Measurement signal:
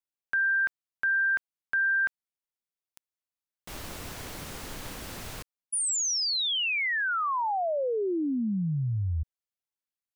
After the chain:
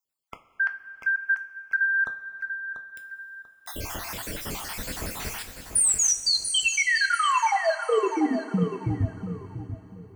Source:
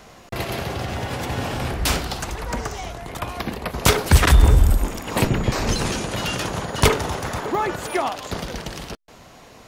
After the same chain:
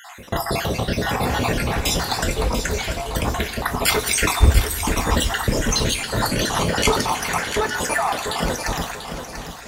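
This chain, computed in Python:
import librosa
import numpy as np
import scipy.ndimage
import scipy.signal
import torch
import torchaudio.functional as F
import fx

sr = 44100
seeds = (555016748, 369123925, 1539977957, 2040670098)

p1 = fx.spec_dropout(x, sr, seeds[0], share_pct=60)
p2 = fx.over_compress(p1, sr, threshold_db=-30.0, ratio=-0.5)
p3 = p1 + (p2 * 10.0 ** (1.0 / 20.0))
p4 = fx.high_shelf(p3, sr, hz=9300.0, db=3.5)
p5 = p4 + fx.echo_feedback(p4, sr, ms=690, feedback_pct=28, wet_db=-9.0, dry=0)
y = fx.rev_double_slope(p5, sr, seeds[1], early_s=0.26, late_s=4.1, knee_db=-18, drr_db=5.5)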